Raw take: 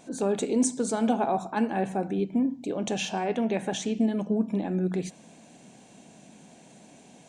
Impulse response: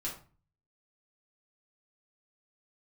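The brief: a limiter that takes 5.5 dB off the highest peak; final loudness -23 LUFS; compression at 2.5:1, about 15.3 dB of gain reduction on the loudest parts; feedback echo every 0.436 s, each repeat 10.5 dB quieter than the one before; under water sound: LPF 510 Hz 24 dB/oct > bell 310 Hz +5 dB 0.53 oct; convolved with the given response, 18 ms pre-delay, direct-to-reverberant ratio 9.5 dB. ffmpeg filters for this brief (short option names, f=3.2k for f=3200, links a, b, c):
-filter_complex "[0:a]acompressor=threshold=-44dB:ratio=2.5,alimiter=level_in=8.5dB:limit=-24dB:level=0:latency=1,volume=-8.5dB,aecho=1:1:436|872|1308:0.299|0.0896|0.0269,asplit=2[a][b];[1:a]atrim=start_sample=2205,adelay=18[c];[b][c]afir=irnorm=-1:irlink=0,volume=-11dB[d];[a][d]amix=inputs=2:normalize=0,lowpass=f=510:w=0.5412,lowpass=f=510:w=1.3066,equalizer=f=310:t=o:w=0.53:g=5,volume=19.5dB"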